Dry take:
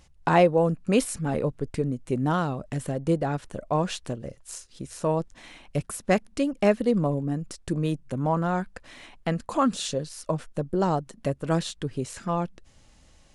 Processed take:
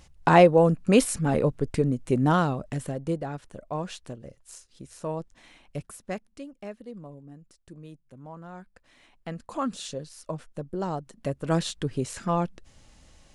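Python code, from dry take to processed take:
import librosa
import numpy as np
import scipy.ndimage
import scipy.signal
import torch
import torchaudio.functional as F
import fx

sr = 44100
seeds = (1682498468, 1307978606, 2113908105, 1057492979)

y = fx.gain(x, sr, db=fx.line((2.4, 3.0), (3.32, -7.0), (5.76, -7.0), (6.68, -18.5), (8.32, -18.5), (9.61, -6.5), (10.92, -6.5), (11.68, 1.5)))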